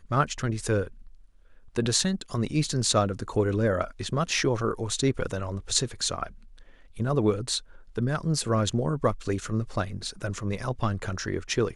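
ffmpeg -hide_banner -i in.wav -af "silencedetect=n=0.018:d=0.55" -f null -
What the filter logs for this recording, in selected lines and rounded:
silence_start: 0.88
silence_end: 1.75 | silence_duration: 0.88
silence_start: 6.27
silence_end: 6.97 | silence_duration: 0.70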